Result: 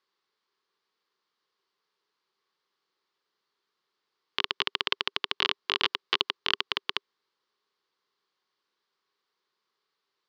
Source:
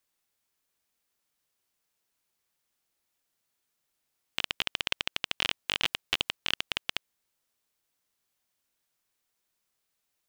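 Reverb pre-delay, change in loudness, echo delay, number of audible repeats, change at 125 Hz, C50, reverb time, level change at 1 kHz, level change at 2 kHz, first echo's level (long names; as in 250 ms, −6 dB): no reverb audible, +2.5 dB, no echo audible, no echo audible, −6.5 dB, no reverb audible, no reverb audible, +7.0 dB, +1.5 dB, no echo audible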